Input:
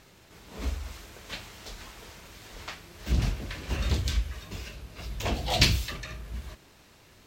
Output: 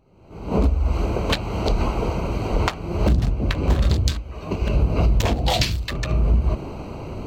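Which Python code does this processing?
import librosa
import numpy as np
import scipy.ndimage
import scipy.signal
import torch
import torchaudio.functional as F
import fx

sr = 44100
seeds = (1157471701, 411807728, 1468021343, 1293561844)

y = fx.wiener(x, sr, points=25)
y = fx.recorder_agc(y, sr, target_db=-8.5, rise_db_per_s=53.0, max_gain_db=30)
y = fx.low_shelf(y, sr, hz=170.0, db=-12.0, at=(4.13, 4.62))
y = F.gain(torch.from_numpy(y), -2.5).numpy()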